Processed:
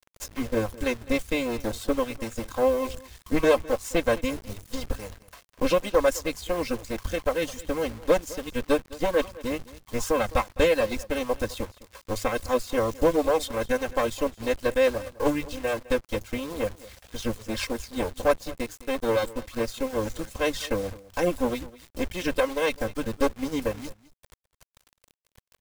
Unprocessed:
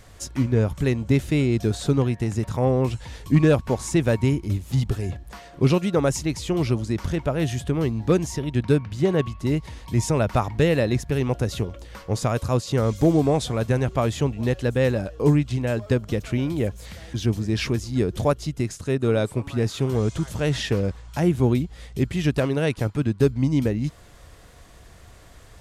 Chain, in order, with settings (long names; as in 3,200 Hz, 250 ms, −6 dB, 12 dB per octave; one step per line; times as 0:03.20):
lower of the sound and its delayed copy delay 3.8 ms
reverb reduction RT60 0.83 s
parametric band 170 Hz −9 dB 1 octave
mains-hum notches 50/100/150 Hz
comb filter 1.9 ms, depth 38%
bit reduction 7 bits
dead-zone distortion −41.5 dBFS
single-tap delay 209 ms −19.5 dB